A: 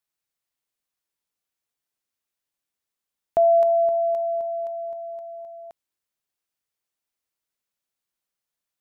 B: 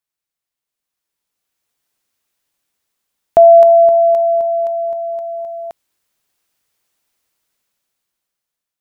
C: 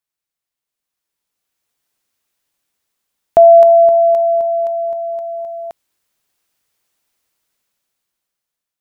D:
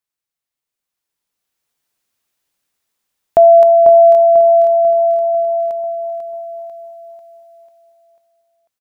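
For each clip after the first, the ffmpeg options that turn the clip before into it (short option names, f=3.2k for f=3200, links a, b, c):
-af "dynaudnorm=f=630:g=5:m=16dB"
-af anull
-af "aecho=1:1:494|988|1482|1976|2470|2964:0.447|0.228|0.116|0.0593|0.0302|0.0154,volume=-1dB"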